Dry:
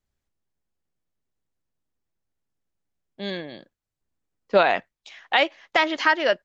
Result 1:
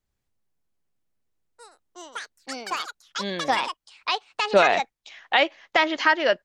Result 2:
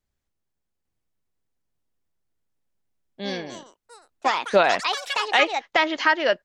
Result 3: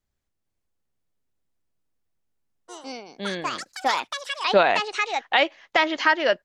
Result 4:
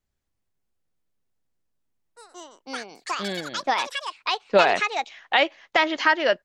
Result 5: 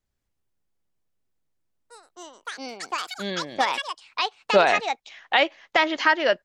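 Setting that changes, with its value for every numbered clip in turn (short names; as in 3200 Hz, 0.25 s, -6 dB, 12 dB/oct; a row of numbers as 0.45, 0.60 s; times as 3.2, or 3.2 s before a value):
echoes that change speed, time: 82, 850, 447, 275, 187 ms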